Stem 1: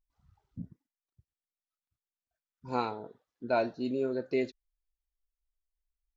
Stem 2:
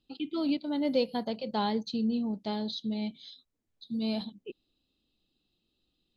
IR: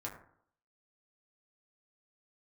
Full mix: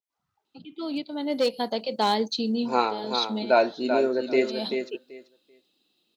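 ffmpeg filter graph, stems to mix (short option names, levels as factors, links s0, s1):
-filter_complex "[0:a]volume=0.891,asplit=3[s0][s1][s2];[s1]volume=0.473[s3];[1:a]volume=11.2,asoftclip=hard,volume=0.0891,adelay=450,volume=0.891[s4];[s2]apad=whole_len=291854[s5];[s4][s5]sidechaincompress=threshold=0.00501:ratio=8:attack=16:release=188[s6];[s3]aecho=0:1:386|772|1158:1|0.17|0.0289[s7];[s0][s6][s7]amix=inputs=3:normalize=0,highpass=310,dynaudnorm=f=590:g=5:m=3.16,adynamicequalizer=threshold=0.0112:dfrequency=4200:dqfactor=0.7:tfrequency=4200:tqfactor=0.7:attack=5:release=100:ratio=0.375:range=2:mode=boostabove:tftype=highshelf"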